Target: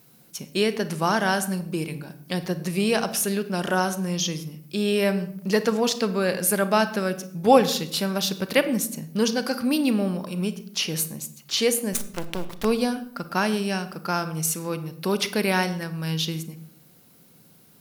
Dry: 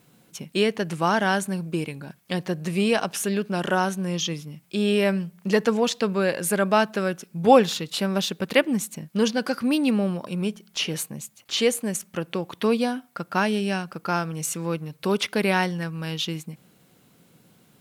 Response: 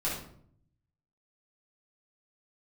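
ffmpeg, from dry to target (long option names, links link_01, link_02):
-filter_complex "[0:a]aexciter=amount=2:drive=3.8:freq=4400,asettb=1/sr,asplit=3[link_01][link_02][link_03];[link_01]atrim=end=11.934[link_04];[link_02]atrim=start=11.93:end=12.65,asetpts=PTS-STARTPTS,afade=type=in:duration=0.004:curve=qsin,afade=type=out:start_time=0.716:duration=0.004:curve=qsin,acrusher=bits=4:dc=4:mix=0:aa=0.000001[link_05];[link_03]atrim=start=12.646[link_06];[link_04][link_05]acrossfade=duration=0.004:curve1=hsin:curve2=qsin[link_07];[link_07][link_06]acrossfade=duration=0.004:curve1=qsin:curve2=hsin,asplit=2[link_08][link_09];[1:a]atrim=start_sample=2205,adelay=32[link_10];[link_09][link_10]afir=irnorm=-1:irlink=0,volume=-18dB[link_11];[link_08][link_11]amix=inputs=2:normalize=0,volume=-1dB"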